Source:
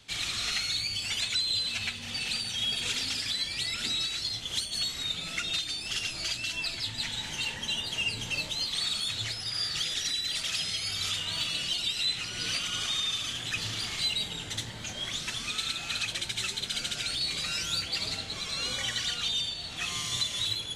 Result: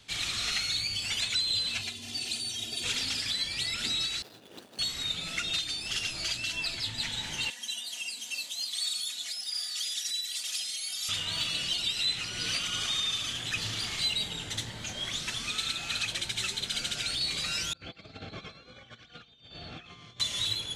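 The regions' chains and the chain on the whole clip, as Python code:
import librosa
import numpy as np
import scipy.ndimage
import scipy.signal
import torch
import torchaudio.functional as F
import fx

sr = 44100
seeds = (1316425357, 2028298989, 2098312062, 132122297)

y = fx.chain(x, sr, fx.highpass(hz=120.0, slope=12),
    fx.peak_eq(hz=1500.0, db=-12.0, octaves=1.9),
    fx.comb(ms=2.9, depth=0.83), at=(1.81, 2.84))
y = fx.chain(y, sr, fx.median_filter(points=41),
    fx.highpass(hz=300.0, slope=12), at=(4.22, 4.79))
y = fx.chain(y, sr, fx.differentiator(),
    fx.comb(ms=4.1, depth=0.74),
    fx.small_body(hz=(240.0, 630.0), ring_ms=20, db=11), at=(7.5, 11.09))
y = fx.chain(y, sr, fx.over_compress(threshold_db=-38.0, ratio=-0.5),
    fx.spacing_loss(db_at_10k=32),
    fx.notch_comb(f0_hz=950.0), at=(17.73, 20.2))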